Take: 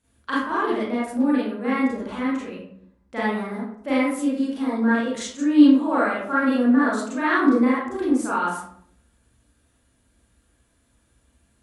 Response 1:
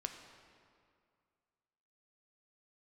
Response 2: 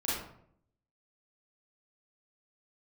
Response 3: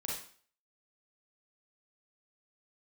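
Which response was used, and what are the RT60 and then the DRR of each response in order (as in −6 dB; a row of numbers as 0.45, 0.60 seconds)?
2; 2.2, 0.65, 0.45 seconds; 4.5, −9.0, −4.5 decibels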